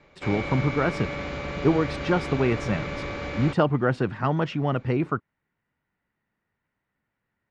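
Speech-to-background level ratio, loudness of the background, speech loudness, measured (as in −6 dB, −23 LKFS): 6.5 dB, −32.5 LKFS, −26.0 LKFS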